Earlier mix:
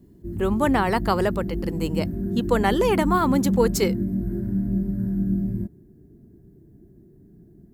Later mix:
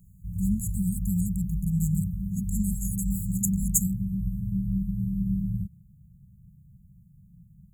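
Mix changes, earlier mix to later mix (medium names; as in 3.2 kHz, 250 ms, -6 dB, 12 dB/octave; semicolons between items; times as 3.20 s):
speech +7.5 dB; master: add brick-wall FIR band-stop 200–6500 Hz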